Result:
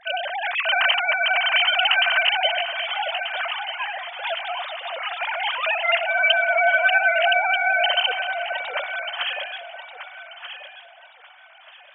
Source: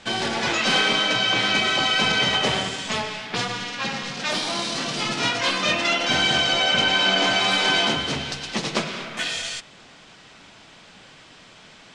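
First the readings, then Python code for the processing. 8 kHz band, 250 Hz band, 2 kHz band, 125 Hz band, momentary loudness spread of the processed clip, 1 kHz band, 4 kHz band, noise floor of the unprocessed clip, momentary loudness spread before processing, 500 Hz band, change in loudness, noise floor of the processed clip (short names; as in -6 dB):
under -40 dB, under -40 dB, +4.0 dB, under -40 dB, 16 LU, +2.0 dB, -3.0 dB, -48 dBFS, 10 LU, +1.5 dB, +0.5 dB, -49 dBFS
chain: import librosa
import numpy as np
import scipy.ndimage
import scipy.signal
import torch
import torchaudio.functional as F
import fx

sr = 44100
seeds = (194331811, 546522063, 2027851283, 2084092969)

y = fx.sine_speech(x, sr)
y = fx.echo_alternate(y, sr, ms=618, hz=810.0, feedback_pct=51, wet_db=-4.0)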